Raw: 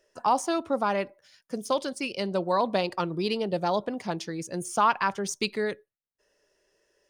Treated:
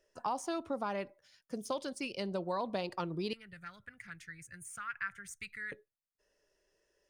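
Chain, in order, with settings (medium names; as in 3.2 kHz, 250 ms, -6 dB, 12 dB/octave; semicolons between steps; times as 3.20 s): bass shelf 90 Hz +8.5 dB; compression 2.5:1, threshold -26 dBFS, peak gain reduction 6.5 dB; 3.33–5.72 s: FFT filter 110 Hz 0 dB, 260 Hz -24 dB, 620 Hz -28 dB, 940 Hz -26 dB, 1.4 kHz +3 dB, 2 kHz +6 dB, 3.1 kHz -11 dB, 5.4 kHz -15 dB, 7.9 kHz -2 dB; trim -7 dB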